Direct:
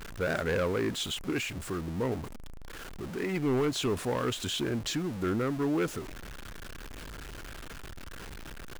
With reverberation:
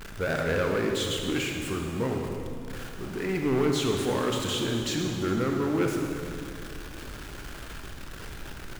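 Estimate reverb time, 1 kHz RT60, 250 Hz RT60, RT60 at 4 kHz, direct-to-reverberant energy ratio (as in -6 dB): 2.5 s, 2.3 s, 3.0 s, 2.1 s, 1.5 dB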